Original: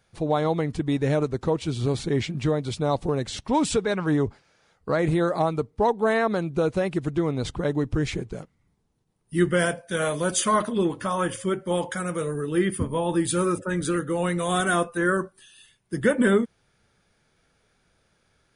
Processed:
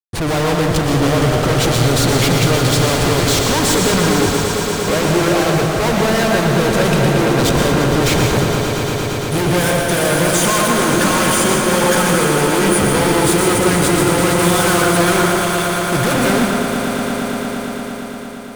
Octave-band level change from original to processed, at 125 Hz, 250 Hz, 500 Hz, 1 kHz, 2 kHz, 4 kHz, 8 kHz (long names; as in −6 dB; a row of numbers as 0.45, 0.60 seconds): +12.0, +9.5, +9.0, +11.0, +12.5, +17.5, +16.0 decibels